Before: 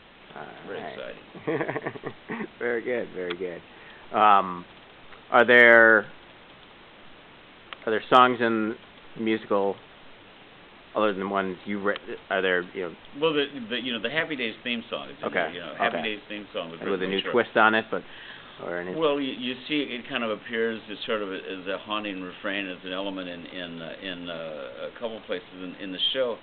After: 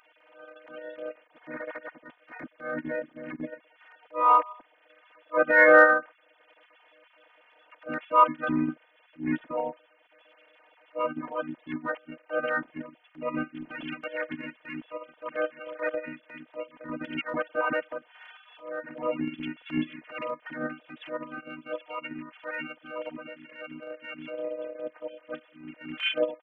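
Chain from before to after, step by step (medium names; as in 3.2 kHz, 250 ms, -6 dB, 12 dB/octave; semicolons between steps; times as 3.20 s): formants replaced by sine waves; robot voice 309 Hz; harmony voices -12 st -11 dB, -4 st -2 dB, -3 st -14 dB; transient shaper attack -9 dB, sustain -5 dB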